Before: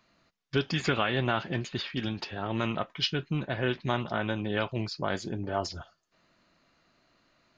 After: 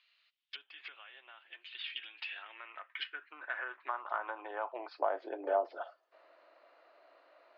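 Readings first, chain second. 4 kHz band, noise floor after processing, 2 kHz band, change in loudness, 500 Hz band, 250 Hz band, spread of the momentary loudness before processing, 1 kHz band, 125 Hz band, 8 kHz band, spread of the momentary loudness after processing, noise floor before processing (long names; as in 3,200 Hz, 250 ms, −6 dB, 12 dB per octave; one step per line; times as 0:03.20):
−11.5 dB, −76 dBFS, −8.0 dB, −9.0 dB, −6.0 dB, −22.5 dB, 6 LU, −4.5 dB, below −40 dB, can't be measured, 16 LU, −73 dBFS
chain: treble cut that deepens with the level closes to 1,100 Hz, closed at −25.5 dBFS
elliptic high-pass filter 290 Hz, stop band 40 dB
downward compressor 2.5 to 1, threshold −40 dBFS, peak gain reduction 10 dB
high-pass filter sweep 3,100 Hz → 580 Hz, 0:01.85–0:05.44
high-frequency loss of the air 330 metres
level +5 dB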